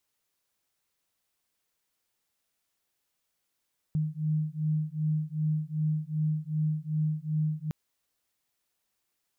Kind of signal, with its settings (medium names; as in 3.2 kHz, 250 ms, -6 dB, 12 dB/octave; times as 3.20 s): beating tones 153 Hz, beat 2.6 Hz, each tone -29.5 dBFS 3.76 s